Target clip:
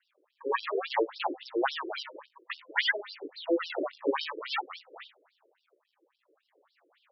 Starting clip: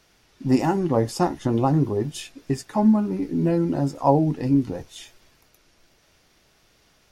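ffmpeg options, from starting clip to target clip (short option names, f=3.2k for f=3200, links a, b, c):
-filter_complex "[0:a]acrusher=samples=36:mix=1:aa=0.000001:lfo=1:lforange=57.6:lforate=0.54,asettb=1/sr,asplit=3[a][b][c];[a]atrim=end=2.624[d];[b]atrim=start=2.62:end=3.37,asetpts=PTS-STARTPTS,afade=t=in:d=0.004:c=qsin,afade=t=out:st=0.746:d=0.004:c=qsin,equalizer=f=2.1k:w=0.98:g=8.5[e];[c]atrim=start=3.366[f];[d][e]acrossfade=d=0.004:c1=hsin:c2=qsin[g];[g][f]acrossfade=d=0.004:c1=qsin:c2=hsin,bandreject=f=257.4:t=h:w=4,bandreject=f=514.8:t=h:w=4,bandreject=f=772.2:t=h:w=4,bandreject=f=1.0296k:t=h:w=4,bandreject=f=1.287k:t=h:w=4,bandreject=f=1.5444k:t=h:w=4,bandreject=f=1.8018k:t=h:w=4,bandreject=f=2.0592k:t=h:w=4,bandreject=f=2.3166k:t=h:w=4,bandreject=f=2.574k:t=h:w=4,bandreject=f=2.8314k:t=h:w=4,afftfilt=real='re*between(b*sr/1024,410*pow(4100/410,0.5+0.5*sin(2*PI*3.6*pts/sr))/1.41,410*pow(4100/410,0.5+0.5*sin(2*PI*3.6*pts/sr))*1.41)':imag='im*between(b*sr/1024,410*pow(4100/410,0.5+0.5*sin(2*PI*3.6*pts/sr))/1.41,410*pow(4100/410,0.5+0.5*sin(2*PI*3.6*pts/sr))*1.41)':win_size=1024:overlap=0.75"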